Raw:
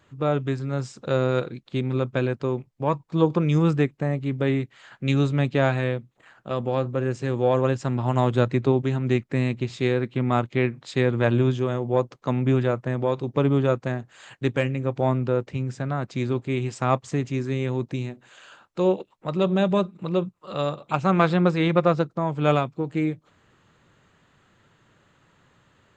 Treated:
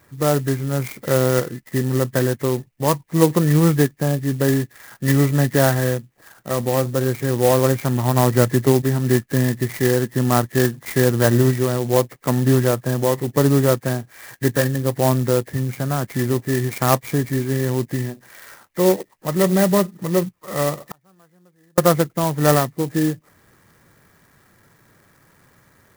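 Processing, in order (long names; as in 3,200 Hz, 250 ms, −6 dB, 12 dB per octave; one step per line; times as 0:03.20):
hearing-aid frequency compression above 1,600 Hz 4 to 1
0:20.84–0:21.78: gate with flip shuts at −23 dBFS, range −40 dB
converter with an unsteady clock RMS 0.072 ms
level +5 dB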